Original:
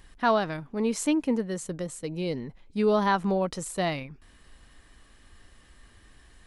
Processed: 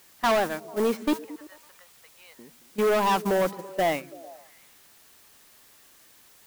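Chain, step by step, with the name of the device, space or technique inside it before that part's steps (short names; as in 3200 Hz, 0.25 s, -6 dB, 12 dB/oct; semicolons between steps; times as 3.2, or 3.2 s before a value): 1.13–2.39 HPF 920 Hz 24 dB/oct; aircraft radio (BPF 310–2400 Hz; hard clip -27.5 dBFS, distortion -6 dB; white noise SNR 13 dB; gate -35 dBFS, range -14 dB); delay with a stepping band-pass 0.111 s, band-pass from 170 Hz, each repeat 0.7 oct, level -12 dB; gain +8 dB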